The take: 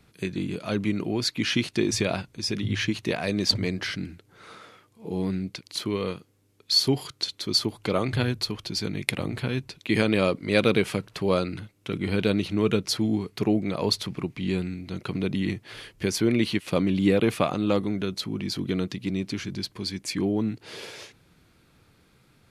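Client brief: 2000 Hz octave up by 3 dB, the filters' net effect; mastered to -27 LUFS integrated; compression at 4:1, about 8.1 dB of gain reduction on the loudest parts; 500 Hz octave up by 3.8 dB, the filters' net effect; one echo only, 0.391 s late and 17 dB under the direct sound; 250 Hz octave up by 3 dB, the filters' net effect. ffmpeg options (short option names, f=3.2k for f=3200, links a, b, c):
-af "equalizer=f=250:t=o:g=3,equalizer=f=500:t=o:g=3.5,equalizer=f=2k:t=o:g=3.5,acompressor=threshold=-23dB:ratio=4,aecho=1:1:391:0.141,volume=1.5dB"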